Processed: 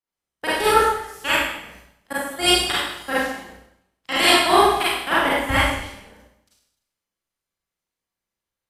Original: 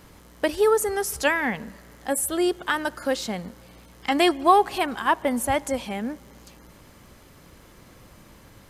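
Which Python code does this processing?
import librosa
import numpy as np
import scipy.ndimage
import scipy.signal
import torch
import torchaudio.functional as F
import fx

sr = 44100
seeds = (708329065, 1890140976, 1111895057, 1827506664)

y = fx.spec_clip(x, sr, under_db=17)
y = fx.level_steps(y, sr, step_db=23)
y = fx.rev_schroeder(y, sr, rt60_s=1.1, comb_ms=33, drr_db=-8.0)
y = fx.band_widen(y, sr, depth_pct=70)
y = F.gain(torch.from_numpy(y), -1.0).numpy()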